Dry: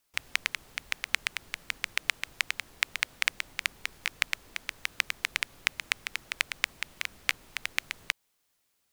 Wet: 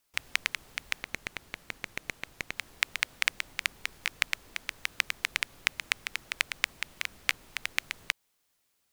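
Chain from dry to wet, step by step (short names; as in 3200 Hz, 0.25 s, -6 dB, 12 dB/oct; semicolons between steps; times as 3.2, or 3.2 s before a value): 1.03–2.57 tube stage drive 18 dB, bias 0.5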